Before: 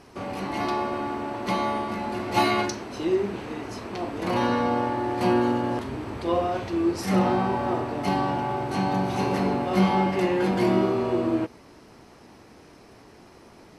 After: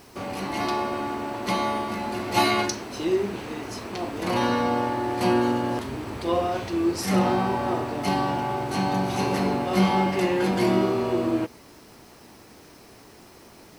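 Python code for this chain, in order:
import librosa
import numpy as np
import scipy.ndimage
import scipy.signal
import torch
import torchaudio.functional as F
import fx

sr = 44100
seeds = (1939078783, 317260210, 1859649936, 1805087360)

y = fx.high_shelf(x, sr, hz=3600.0, db=7.0)
y = fx.quant_dither(y, sr, seeds[0], bits=10, dither='triangular')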